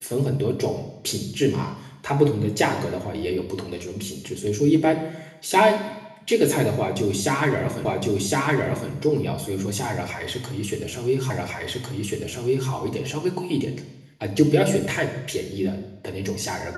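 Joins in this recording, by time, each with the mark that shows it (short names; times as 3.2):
7.85 repeat of the last 1.06 s
11.3 repeat of the last 1.4 s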